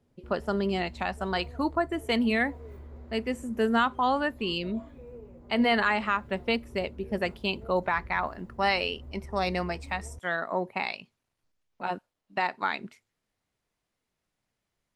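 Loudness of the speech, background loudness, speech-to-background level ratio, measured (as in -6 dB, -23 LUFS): -29.5 LUFS, -47.5 LUFS, 18.0 dB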